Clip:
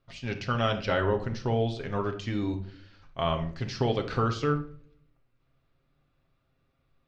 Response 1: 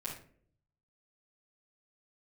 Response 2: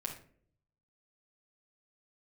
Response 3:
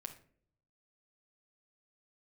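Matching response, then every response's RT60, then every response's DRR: 3; non-exponential decay, non-exponential decay, non-exponential decay; −7.5, −1.0, 4.0 decibels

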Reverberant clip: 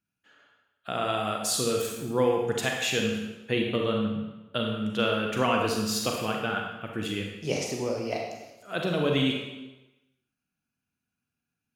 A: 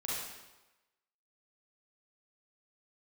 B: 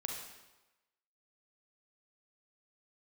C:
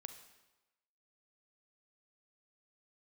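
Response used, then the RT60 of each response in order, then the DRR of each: B; 1.1, 1.1, 1.1 seconds; −7.0, 0.5, 8.0 decibels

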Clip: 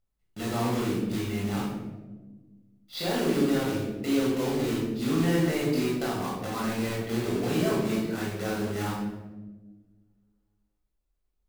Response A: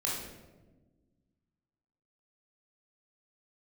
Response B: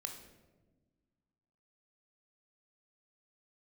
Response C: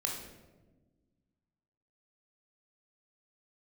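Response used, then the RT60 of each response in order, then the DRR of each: A; 1.3, 1.3, 1.3 seconds; −5.0, 4.0, −0.5 decibels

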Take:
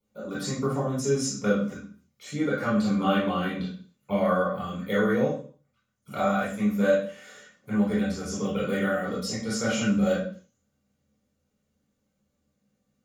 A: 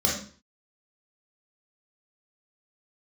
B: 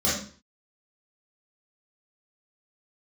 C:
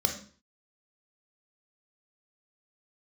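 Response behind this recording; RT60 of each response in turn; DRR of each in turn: B; 0.45, 0.45, 0.45 seconds; −4.5, −10.0, 2.5 decibels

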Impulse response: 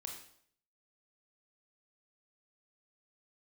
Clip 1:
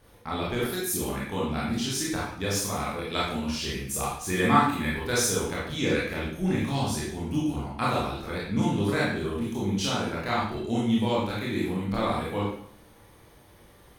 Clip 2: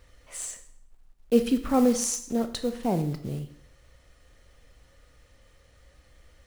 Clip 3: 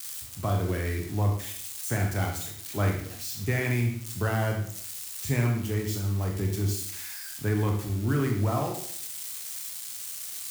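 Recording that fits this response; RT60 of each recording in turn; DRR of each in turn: 3; 0.65, 0.65, 0.65 seconds; −6.5, 9.5, 1.5 decibels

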